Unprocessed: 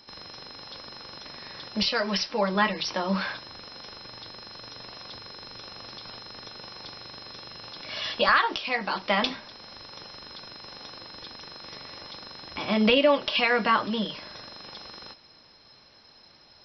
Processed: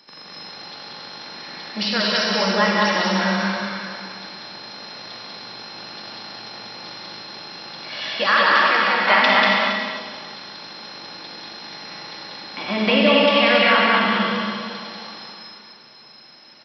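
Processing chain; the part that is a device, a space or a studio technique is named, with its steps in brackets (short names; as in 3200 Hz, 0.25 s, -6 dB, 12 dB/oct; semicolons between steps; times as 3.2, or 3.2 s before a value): stadium PA (HPF 140 Hz 24 dB/oct; bell 1900 Hz +3.5 dB 1.2 oct; loudspeakers at several distances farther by 65 m -2 dB, 79 m -10 dB; reverb RT60 2.2 s, pre-delay 46 ms, DRR -0.5 dB); 9.07–9.72 bell 1500 Hz +6 dB 2.5 oct; loudspeakers at several distances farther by 77 m -12 dB, 94 m -9 dB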